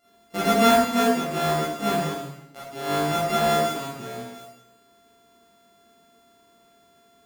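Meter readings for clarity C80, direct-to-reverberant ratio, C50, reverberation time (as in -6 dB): 3.0 dB, -10.0 dB, -0.5 dB, 0.85 s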